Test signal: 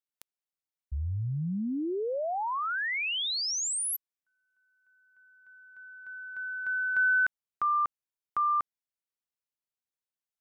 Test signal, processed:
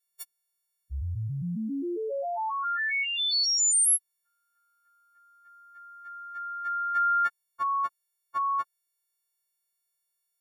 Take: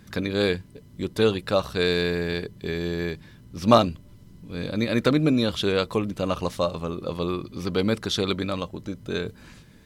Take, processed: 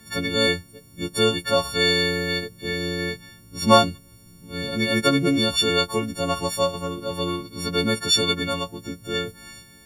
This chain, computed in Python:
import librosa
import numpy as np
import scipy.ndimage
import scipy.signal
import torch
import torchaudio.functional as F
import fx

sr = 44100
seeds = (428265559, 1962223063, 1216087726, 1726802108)

y = fx.freq_snap(x, sr, grid_st=4)
y = fx.notch(y, sr, hz=2900.0, q=11.0)